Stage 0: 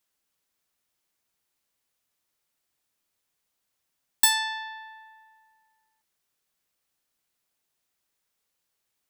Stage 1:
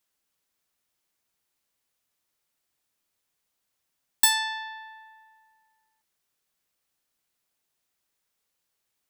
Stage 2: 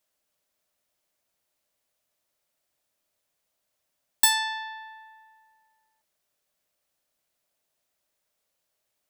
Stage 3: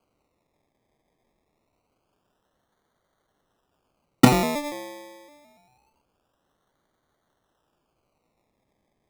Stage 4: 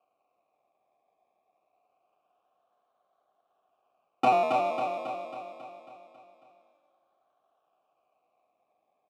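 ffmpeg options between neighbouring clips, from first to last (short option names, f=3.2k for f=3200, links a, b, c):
-af anull
-af "equalizer=f=610:w=3.9:g=10.5"
-af "acrusher=samples=24:mix=1:aa=0.000001:lfo=1:lforange=14.4:lforate=0.25,volume=5.5dB"
-filter_complex "[0:a]asoftclip=type=tanh:threshold=-9.5dB,asplit=3[a][b][c];[a]bandpass=f=730:t=q:w=8,volume=0dB[d];[b]bandpass=f=1.09k:t=q:w=8,volume=-6dB[e];[c]bandpass=f=2.44k:t=q:w=8,volume=-9dB[f];[d][e][f]amix=inputs=3:normalize=0,asplit=2[g][h];[h]aecho=0:1:273|546|819|1092|1365|1638|1911|2184:0.562|0.321|0.183|0.104|0.0594|0.0338|0.0193|0.011[i];[g][i]amix=inputs=2:normalize=0,volume=7.5dB"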